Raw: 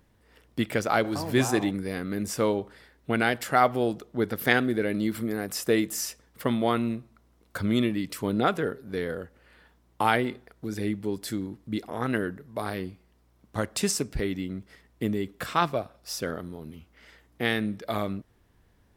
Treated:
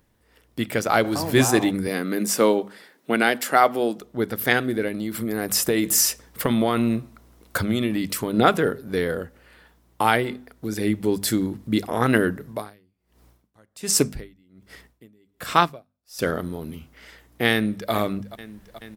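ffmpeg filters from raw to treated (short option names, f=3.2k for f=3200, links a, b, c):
-filter_complex "[0:a]asettb=1/sr,asplit=3[a][b][c];[a]atrim=end=1.874[d];[b]atrim=start=1.87:end=4.01,asetpts=PTS-STARTPTS,afade=t=in:d=0.004:c=qsin,afade=t=out:st=2.136:d=0.004:c=qsin,highpass=f=180:w=0.5412,highpass=f=180:w=1.3066[e];[c]atrim=start=4.006[f];[d][e]acrossfade=d=0.004:c1=hsin:c2=qsin[g];[g][f]acrossfade=d=0.004:c1=qsin:c2=hsin,asettb=1/sr,asplit=3[h][i][j];[h]atrim=end=4.884[k];[i]atrim=start=4.88:end=8.34,asetpts=PTS-STARTPTS,afade=t=in:d=0.004:c=qsin,afade=t=out:st=3.456:d=0.004:c=qsin,acompressor=threshold=-26dB:ratio=6:attack=3.2:release=140:knee=1:detection=peak[l];[j]atrim=start=8.336[m];[k][l]acrossfade=d=0.004:c1=hsin:c2=qsin[n];[n][m]acrossfade=d=0.004:c1=qsin:c2=hsin,asettb=1/sr,asplit=3[o][p][q];[o]atrim=end=12.484[r];[p]atrim=start=12.48:end=16.19,asetpts=PTS-STARTPTS,afade=t=in:d=0.004:c=qsin,afade=t=out:st=3.706:d=0.004:c=qsin,aeval=exprs='val(0)*pow(10,-38*(0.5-0.5*cos(2*PI*1.3*n/s))/20)':c=same[s];[q]atrim=start=16.186[t];[r][s]acrossfade=d=0.004:c1=hsin:c2=qsin[u];[u][t]acrossfade=d=0.004:c1=qsin:c2=hsin,asplit=2[v][w];[w]afade=t=in:st=17.52:d=0.01,afade=t=out:st=17.92:d=0.01,aecho=0:1:430|860|1290|1720|2150|2580|3010|3440:0.141254|0.0988776|0.0692143|0.04845|0.033915|0.0237405|0.0166184|0.0116329[x];[v][x]amix=inputs=2:normalize=0,highshelf=f=7.6k:g=6.5,bandreject=f=50:t=h:w=6,bandreject=f=100:t=h:w=6,bandreject=f=150:t=h:w=6,bandreject=f=200:t=h:w=6,bandreject=f=250:t=h:w=6,dynaudnorm=f=120:g=13:m=11.5dB,volume=-1dB"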